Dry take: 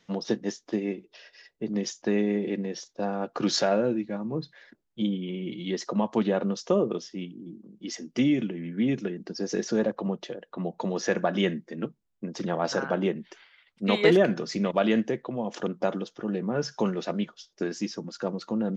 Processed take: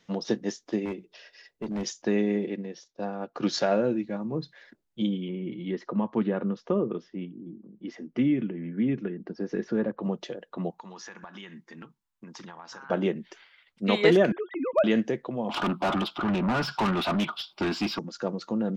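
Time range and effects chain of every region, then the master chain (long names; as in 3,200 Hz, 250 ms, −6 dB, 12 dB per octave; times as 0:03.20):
0:00.85–0:01.86: mains-hum notches 60/120/180 Hz + hard clipping −27.5 dBFS
0:02.46–0:03.69: low-pass filter 6,400 Hz + expander for the loud parts, over −37 dBFS
0:05.28–0:10.03: low-pass filter 1,900 Hz + dynamic equaliser 670 Hz, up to −7 dB, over −41 dBFS, Q 1.5
0:10.70–0:12.90: low shelf with overshoot 750 Hz −7 dB, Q 3 + downward compressor 8 to 1, threshold −40 dBFS
0:14.32–0:14.84: three sine waves on the formant tracks + hard clipping −13.5 dBFS
0:15.49–0:17.99: phaser with its sweep stopped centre 1,800 Hz, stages 6 + mid-hump overdrive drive 30 dB, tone 2,300 Hz, clips at −17.5 dBFS
whole clip: no processing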